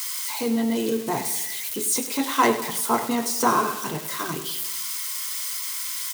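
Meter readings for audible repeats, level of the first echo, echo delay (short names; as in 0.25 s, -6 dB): 5, -12.5 dB, 98 ms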